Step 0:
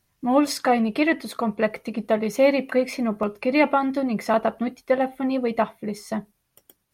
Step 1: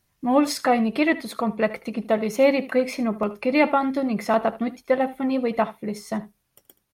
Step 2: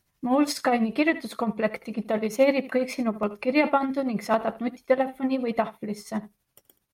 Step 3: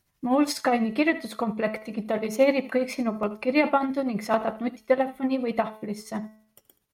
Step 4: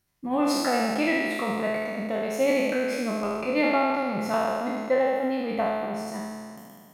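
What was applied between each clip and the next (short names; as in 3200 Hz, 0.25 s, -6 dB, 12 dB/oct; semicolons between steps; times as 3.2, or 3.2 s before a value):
echo 76 ms -17.5 dB
tremolo 12 Hz, depth 57%
de-hum 216.4 Hz, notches 35
spectral trails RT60 2.13 s; gain -5.5 dB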